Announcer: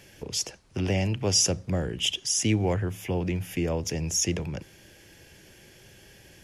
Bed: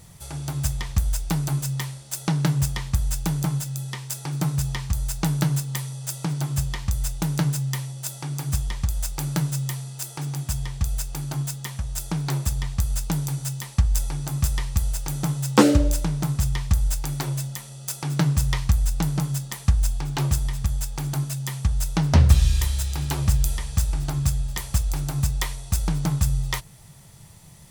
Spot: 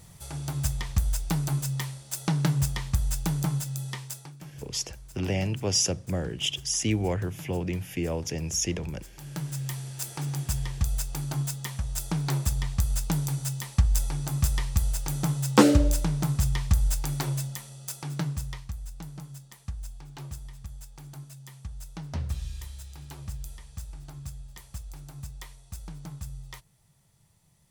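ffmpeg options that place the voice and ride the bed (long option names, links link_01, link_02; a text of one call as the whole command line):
ffmpeg -i stem1.wav -i stem2.wav -filter_complex "[0:a]adelay=4400,volume=-2dB[link_01];[1:a]volume=15.5dB,afade=type=out:start_time=3.95:duration=0.4:silence=0.133352,afade=type=in:start_time=9.14:duration=0.81:silence=0.11885,afade=type=out:start_time=17.29:duration=1.37:silence=0.177828[link_02];[link_01][link_02]amix=inputs=2:normalize=0" out.wav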